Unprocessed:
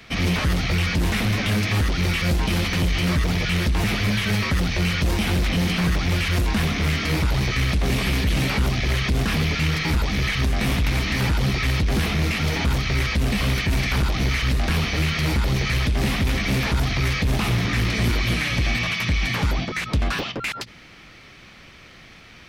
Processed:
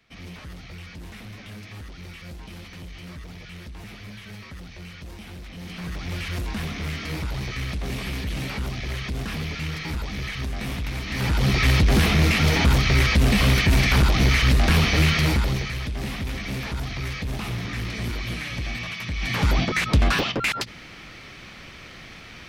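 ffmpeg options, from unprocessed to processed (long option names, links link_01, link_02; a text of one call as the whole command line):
ffmpeg -i in.wav -af "volume=15dB,afade=type=in:start_time=5.54:duration=0.69:silence=0.298538,afade=type=in:start_time=11.06:duration=0.61:silence=0.266073,afade=type=out:start_time=15.09:duration=0.63:silence=0.266073,afade=type=in:start_time=19.15:duration=0.45:silence=0.266073" out.wav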